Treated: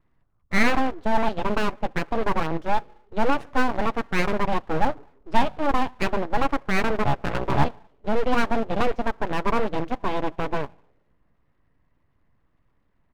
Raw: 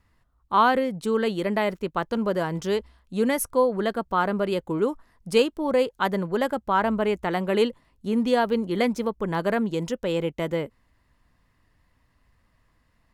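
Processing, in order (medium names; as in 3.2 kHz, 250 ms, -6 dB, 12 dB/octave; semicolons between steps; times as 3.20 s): 7.03–7.67 s: cycle switcher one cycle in 3, muted; two-slope reverb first 0.77 s, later 3.3 s, from -28 dB, DRR 16.5 dB; in parallel at -1 dB: bit crusher 4-bit; on the sum: tape spacing loss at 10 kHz 42 dB; comb 7.1 ms, depth 33%; full-wave rectifier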